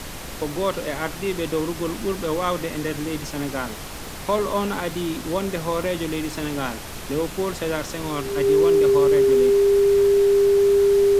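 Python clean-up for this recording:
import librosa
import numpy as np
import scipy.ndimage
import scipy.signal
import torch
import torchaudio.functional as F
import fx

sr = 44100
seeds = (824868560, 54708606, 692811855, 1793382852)

y = fx.fix_declick_ar(x, sr, threshold=6.5)
y = fx.notch(y, sr, hz=400.0, q=30.0)
y = fx.noise_reduce(y, sr, print_start_s=3.75, print_end_s=4.25, reduce_db=30.0)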